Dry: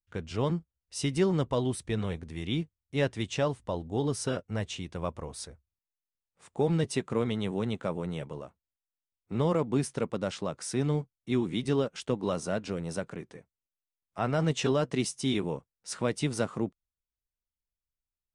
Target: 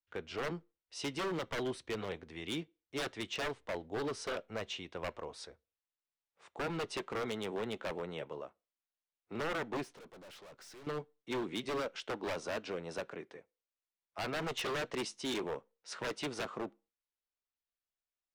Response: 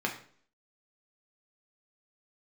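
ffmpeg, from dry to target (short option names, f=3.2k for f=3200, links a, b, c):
-filter_complex "[0:a]acrossover=split=310 5500:gain=0.2 1 0.126[a][b][c];[a][b][c]amix=inputs=3:normalize=0,asettb=1/sr,asplit=3[d][e][f];[d]atrim=end=9.834[g];[e]atrim=start=9.83:end=10.87,asetpts=PTS-STARTPTS,afade=t=in:d=0.004:c=qsin,afade=t=out:st=1.036:d=0.004:c=qsin,aeval=exprs='(tanh(355*val(0)+0.25)-tanh(0.25))/355':c=same[h];[f]atrim=start=10.866[i];[g][h]acrossfade=d=0.004:c1=hsin:c2=qsin[j];[j][i]acrossfade=d=0.004:c1=qsin:c2=hsin,aeval=exprs='0.0335*(abs(mod(val(0)/0.0335+3,4)-2)-1)':c=same,asplit=2[k][l];[1:a]atrim=start_sample=2205,asetrate=74970,aresample=44100[m];[l][m]afir=irnorm=-1:irlink=0,volume=-19dB[n];[k][n]amix=inputs=2:normalize=0,volume=-2dB"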